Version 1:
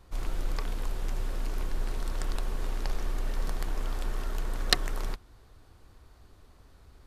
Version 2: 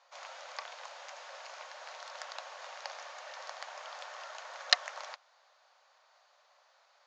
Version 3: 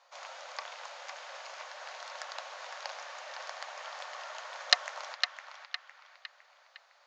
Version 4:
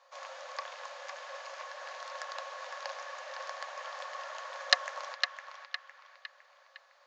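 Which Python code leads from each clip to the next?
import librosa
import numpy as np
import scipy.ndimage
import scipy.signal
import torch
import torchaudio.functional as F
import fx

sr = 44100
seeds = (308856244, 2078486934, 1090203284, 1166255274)

y1 = scipy.signal.sosfilt(scipy.signal.cheby1(5, 1.0, [560.0, 6800.0], 'bandpass', fs=sr, output='sos'), x)
y2 = fx.echo_banded(y1, sr, ms=508, feedback_pct=47, hz=2100.0, wet_db=-4.5)
y2 = y2 * 10.0 ** (1.5 / 20.0)
y3 = fx.small_body(y2, sr, hz=(540.0, 1100.0, 1700.0), ring_ms=45, db=10)
y3 = y3 * 10.0 ** (-2.0 / 20.0)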